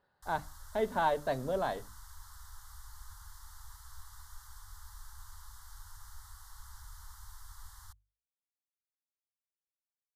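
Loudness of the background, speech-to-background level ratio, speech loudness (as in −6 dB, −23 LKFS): −53.0 LKFS, 18.5 dB, −34.5 LKFS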